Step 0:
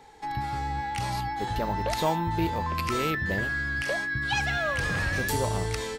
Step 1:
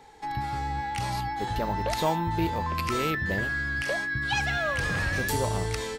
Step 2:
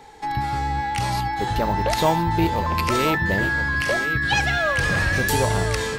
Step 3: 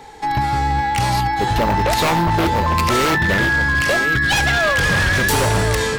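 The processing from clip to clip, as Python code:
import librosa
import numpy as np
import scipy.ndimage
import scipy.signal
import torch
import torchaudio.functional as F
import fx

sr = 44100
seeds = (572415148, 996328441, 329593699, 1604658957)

y1 = x
y2 = y1 + 10.0 ** (-10.5 / 20.0) * np.pad(y1, (int(1022 * sr / 1000.0), 0))[:len(y1)]
y2 = F.gain(torch.from_numpy(y2), 6.5).numpy()
y3 = 10.0 ** (-17.0 / 20.0) * (np.abs((y2 / 10.0 ** (-17.0 / 20.0) + 3.0) % 4.0 - 2.0) - 1.0)
y3 = F.gain(torch.from_numpy(y3), 6.0).numpy()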